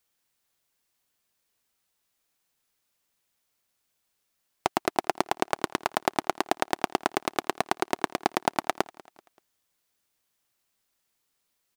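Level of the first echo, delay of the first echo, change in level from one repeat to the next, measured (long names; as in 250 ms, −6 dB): −22.0 dB, 192 ms, −7.0 dB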